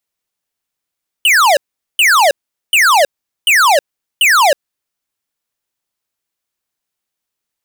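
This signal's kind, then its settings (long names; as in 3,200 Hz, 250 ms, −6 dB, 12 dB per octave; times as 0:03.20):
repeated falling chirps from 3,100 Hz, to 530 Hz, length 0.32 s square, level −9 dB, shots 5, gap 0.42 s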